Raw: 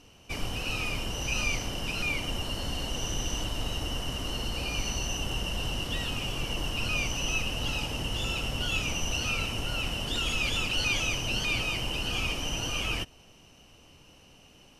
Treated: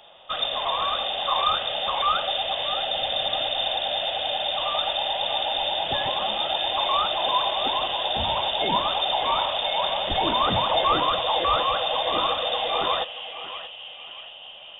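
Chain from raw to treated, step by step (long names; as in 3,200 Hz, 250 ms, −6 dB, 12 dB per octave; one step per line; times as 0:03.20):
low-shelf EQ 460 Hz −7 dB
notch filter 1,300 Hz, Q 5.2
on a send: feedback echo with a band-pass in the loop 629 ms, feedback 78%, band-pass 580 Hz, level −4 dB
on the sum: voice inversion scrambler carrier 3,600 Hz
level +8.5 dB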